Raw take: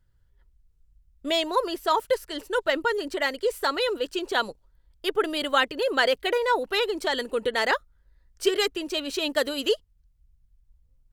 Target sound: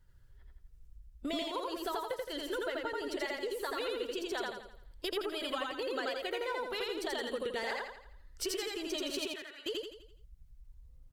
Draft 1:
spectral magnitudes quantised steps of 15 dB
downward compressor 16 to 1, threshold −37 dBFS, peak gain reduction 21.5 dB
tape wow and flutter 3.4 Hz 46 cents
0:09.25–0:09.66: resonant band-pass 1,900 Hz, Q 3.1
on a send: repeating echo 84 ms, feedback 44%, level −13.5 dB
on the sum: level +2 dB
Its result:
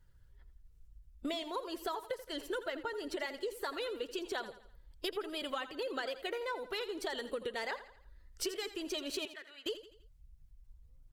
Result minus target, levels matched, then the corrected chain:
echo-to-direct −12 dB
spectral magnitudes quantised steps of 15 dB
downward compressor 16 to 1, threshold −37 dBFS, peak gain reduction 21.5 dB
tape wow and flutter 3.4 Hz 46 cents
0:09.25–0:09.66: resonant band-pass 1,900 Hz, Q 3.1
on a send: repeating echo 84 ms, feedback 44%, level −1.5 dB
on the sum: level +2 dB

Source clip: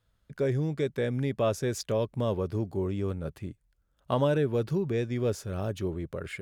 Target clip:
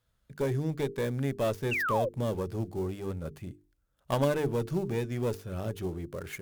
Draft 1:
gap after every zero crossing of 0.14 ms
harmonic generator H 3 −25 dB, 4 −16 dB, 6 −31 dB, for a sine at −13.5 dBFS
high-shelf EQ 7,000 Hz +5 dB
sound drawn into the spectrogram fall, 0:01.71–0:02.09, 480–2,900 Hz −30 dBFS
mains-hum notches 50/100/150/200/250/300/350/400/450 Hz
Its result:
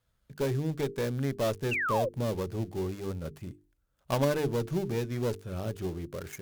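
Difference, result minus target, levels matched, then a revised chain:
gap after every zero crossing: distortion +5 dB
gap after every zero crossing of 0.059 ms
harmonic generator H 3 −25 dB, 4 −16 dB, 6 −31 dB, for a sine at −13.5 dBFS
high-shelf EQ 7,000 Hz +5 dB
sound drawn into the spectrogram fall, 0:01.71–0:02.09, 480–2,900 Hz −30 dBFS
mains-hum notches 50/100/150/200/250/300/350/400/450 Hz

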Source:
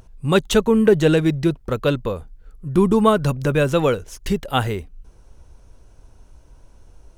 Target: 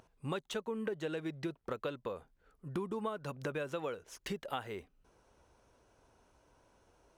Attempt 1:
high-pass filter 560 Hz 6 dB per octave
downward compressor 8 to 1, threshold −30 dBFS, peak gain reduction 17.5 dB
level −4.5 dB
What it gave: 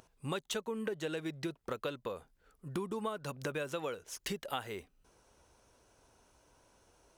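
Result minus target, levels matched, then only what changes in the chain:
8,000 Hz band +7.0 dB
add after downward compressor: high-shelf EQ 3,800 Hz −9.5 dB

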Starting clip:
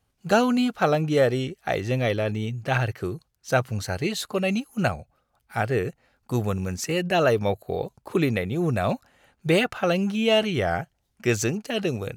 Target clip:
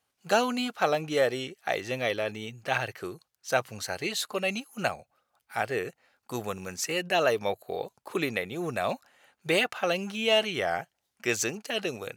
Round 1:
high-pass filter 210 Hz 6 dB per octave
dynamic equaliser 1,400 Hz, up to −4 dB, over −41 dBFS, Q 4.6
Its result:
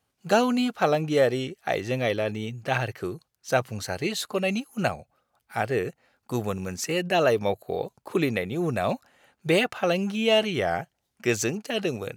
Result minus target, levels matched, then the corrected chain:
250 Hz band +4.0 dB
high-pass filter 710 Hz 6 dB per octave
dynamic equaliser 1,400 Hz, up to −4 dB, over −41 dBFS, Q 4.6

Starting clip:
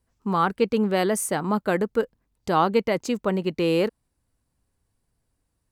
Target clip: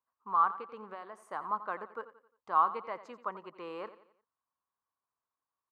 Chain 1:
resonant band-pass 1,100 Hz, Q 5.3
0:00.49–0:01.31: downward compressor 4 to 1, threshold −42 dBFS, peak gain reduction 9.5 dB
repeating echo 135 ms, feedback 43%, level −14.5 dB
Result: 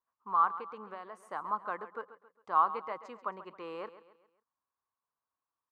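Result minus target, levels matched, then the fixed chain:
echo 47 ms late
resonant band-pass 1,100 Hz, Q 5.3
0:00.49–0:01.31: downward compressor 4 to 1, threshold −42 dBFS, peak gain reduction 9.5 dB
repeating echo 88 ms, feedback 43%, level −14.5 dB

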